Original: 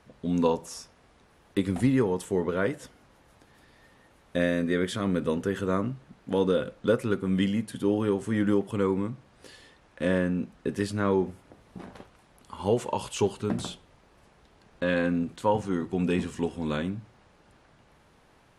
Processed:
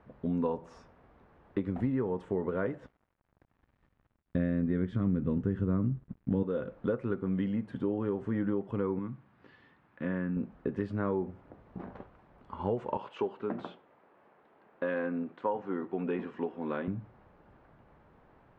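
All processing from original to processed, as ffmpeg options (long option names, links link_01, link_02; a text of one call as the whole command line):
ffmpeg -i in.wav -filter_complex "[0:a]asettb=1/sr,asplit=3[link_01][link_02][link_03];[link_01]atrim=end=2.804[link_04];[link_02]atrim=start=2.8:end=6.43,asetpts=PTS-STARTPTS,afade=type=in:duration=0.004:curve=qsin,afade=type=out:start_time=3.626:duration=0.004:curve=qsin,aeval=exprs='sgn(val(0))*max(abs(val(0))-0.00211,0)':channel_layout=same,asubboost=boost=8:cutoff=250[link_05];[link_03]atrim=start=6.426[link_06];[link_04][link_05]acrossfade=duration=0.004:curve1=hsin:curve2=qsin[link_07];[link_07][link_06]acrossfade=duration=0.004:curve1=qsin:curve2=hsin,asettb=1/sr,asplit=3[link_08][link_09][link_10];[link_08]atrim=end=8.994[link_11];[link_09]atrim=start=8.99:end=10.37,asetpts=PTS-STARTPTS,afade=type=in:duration=0.004:curve=qsin,afade=type=out:start_time=1.376:duration=0.004:curve=qsin,acrossover=split=3000[link_12][link_13];[link_13]acompressor=threshold=-53dB:ratio=4:attack=1:release=60[link_14];[link_12][link_14]amix=inputs=2:normalize=0,highpass=130,lowpass=5000,equalizer=frequency=530:width_type=o:width=1.4:gain=-11[link_15];[link_10]atrim=start=10.366[link_16];[link_11][link_15]acrossfade=duration=0.004:curve1=hsin:curve2=qsin[link_17];[link_17][link_16]acrossfade=duration=0.004:curve1=qsin:curve2=hsin,asettb=1/sr,asplit=3[link_18][link_19][link_20];[link_18]atrim=end=12.974[link_21];[link_19]atrim=start=12.97:end=16.88,asetpts=PTS-STARTPTS,afade=type=in:duration=0.004:curve=qsin,afade=type=out:start_time=3.906:duration=0.004:curve=qsin,highpass=290,lowpass=2500,aemphasis=mode=production:type=75fm[link_22];[link_20]atrim=start=16.876[link_23];[link_21][link_22]acrossfade=duration=0.004:curve1=hsin:curve2=qsin[link_24];[link_24][link_23]acrossfade=duration=0.004:curve1=qsin:curve2=hsin,lowpass=1500,acompressor=threshold=-29dB:ratio=3" out.wav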